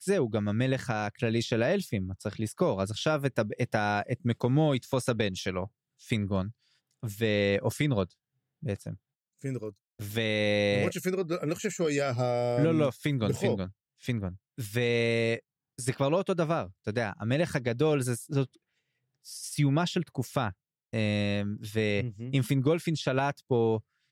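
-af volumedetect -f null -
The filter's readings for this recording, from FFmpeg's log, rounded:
mean_volume: -29.5 dB
max_volume: -12.6 dB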